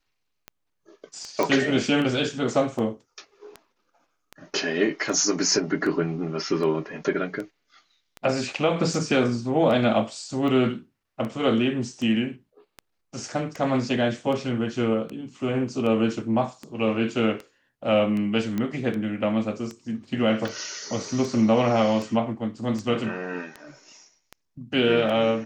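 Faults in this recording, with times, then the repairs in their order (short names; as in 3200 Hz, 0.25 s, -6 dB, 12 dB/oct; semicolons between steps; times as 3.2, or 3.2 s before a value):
tick 78 rpm -21 dBFS
1.43 pop -10 dBFS
18.58 pop -15 dBFS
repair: de-click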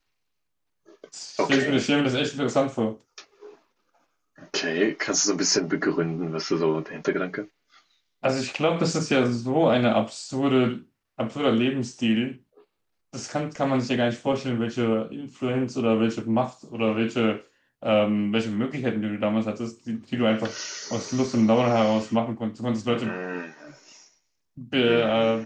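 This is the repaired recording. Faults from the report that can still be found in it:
none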